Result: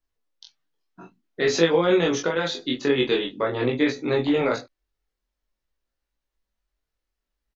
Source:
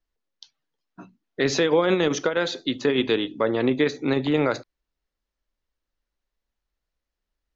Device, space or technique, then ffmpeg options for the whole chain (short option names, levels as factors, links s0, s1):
double-tracked vocal: -filter_complex "[0:a]asplit=2[s0][s1];[s1]adelay=24,volume=0.708[s2];[s0][s2]amix=inputs=2:normalize=0,flanger=delay=16.5:depth=5.2:speed=0.5,volume=1.19"